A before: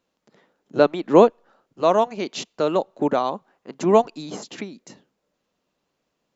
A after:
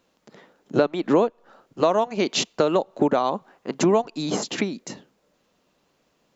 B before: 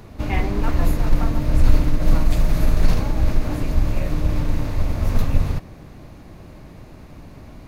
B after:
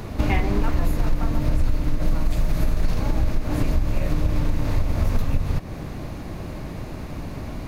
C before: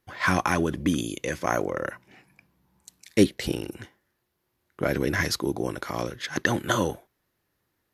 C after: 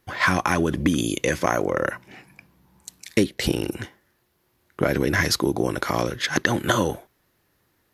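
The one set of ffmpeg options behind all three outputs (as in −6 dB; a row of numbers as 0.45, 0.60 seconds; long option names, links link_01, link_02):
-af "acompressor=threshold=-25dB:ratio=6,volume=8.5dB"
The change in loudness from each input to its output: −2.5, −3.5, +3.5 LU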